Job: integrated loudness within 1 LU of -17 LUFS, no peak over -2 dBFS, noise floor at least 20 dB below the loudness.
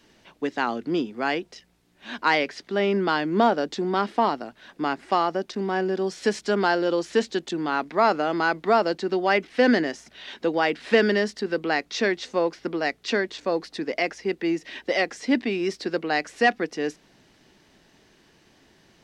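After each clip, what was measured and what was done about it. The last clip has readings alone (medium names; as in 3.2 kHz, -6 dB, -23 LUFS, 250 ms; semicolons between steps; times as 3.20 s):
loudness -24.5 LUFS; peak level -7.0 dBFS; loudness target -17.0 LUFS
-> trim +7.5 dB; peak limiter -2 dBFS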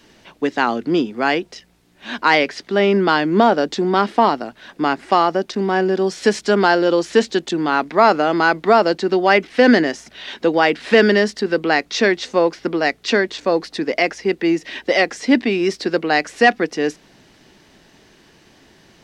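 loudness -17.5 LUFS; peak level -2.0 dBFS; noise floor -52 dBFS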